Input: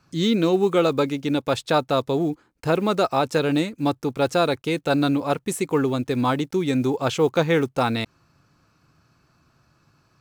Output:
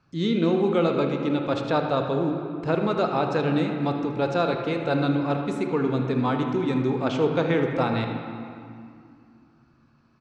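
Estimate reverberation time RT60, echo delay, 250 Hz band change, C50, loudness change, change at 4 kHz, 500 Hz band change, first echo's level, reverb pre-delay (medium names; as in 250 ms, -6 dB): 2.3 s, 78 ms, -1.5 dB, 4.0 dB, -2.0 dB, -6.5 dB, -2.5 dB, -14.0 dB, 24 ms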